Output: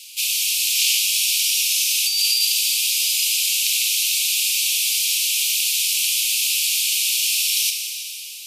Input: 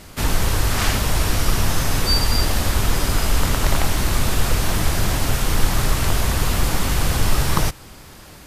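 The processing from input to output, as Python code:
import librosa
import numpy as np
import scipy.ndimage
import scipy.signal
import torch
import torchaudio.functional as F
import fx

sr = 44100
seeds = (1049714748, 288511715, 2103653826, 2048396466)

y = scipy.signal.sosfilt(scipy.signal.butter(16, 2400.0, 'highpass', fs=sr, output='sos'), x)
y = fx.over_compress(y, sr, threshold_db=-26.0, ratio=-1.0)
y = fx.rev_plate(y, sr, seeds[0], rt60_s=3.2, hf_ratio=0.95, predelay_ms=0, drr_db=3.0)
y = y * librosa.db_to_amplitude(7.0)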